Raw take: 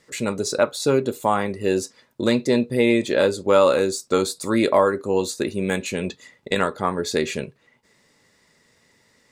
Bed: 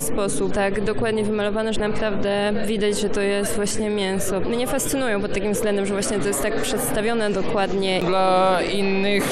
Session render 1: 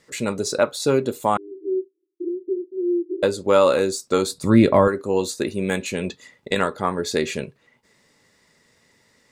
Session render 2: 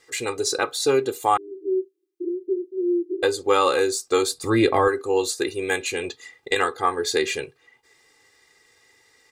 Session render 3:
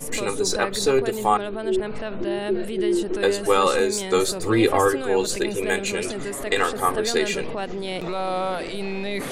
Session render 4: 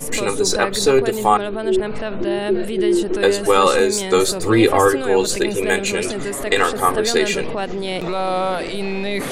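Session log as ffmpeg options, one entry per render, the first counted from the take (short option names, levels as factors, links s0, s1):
-filter_complex "[0:a]asettb=1/sr,asplit=3[s0][s1][s2];[s0]atrim=end=1.374[s3];[s1]atrim=start=1.37:end=3.23,asetpts=PTS-STARTPTS,afade=t=in:d=0.004:c=qsin,afade=t=out:st=1.856:d=0.004:c=qsin,asuperpass=centerf=350:order=8:qfactor=4.2[s4];[s2]atrim=start=3.226[s5];[s3][s4]acrossfade=d=0.004:c1=hsin:c2=qsin[s6];[s6][s5]acrossfade=d=0.004:c1=qsin:c2=hsin,asettb=1/sr,asplit=3[s7][s8][s9];[s7]atrim=end=4.314[s10];[s8]atrim=start=4.31:end=4.88,asetpts=PTS-STARTPTS,afade=t=in:d=0.004:c=qsin,afade=t=out:st=0.566:d=0.004:c=qsin,bass=f=250:g=14,treble=f=4000:g=-6[s11];[s9]atrim=start=4.876[s12];[s10][s11]acrossfade=d=0.004:c1=hsin:c2=qsin[s13];[s13][s12]acrossfade=d=0.004:c1=qsin:c2=hsin"
-af "lowshelf=f=410:g=-9.5,aecho=1:1:2.5:0.94"
-filter_complex "[1:a]volume=0.398[s0];[0:a][s0]amix=inputs=2:normalize=0"
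-af "volume=1.78,alimiter=limit=0.794:level=0:latency=1"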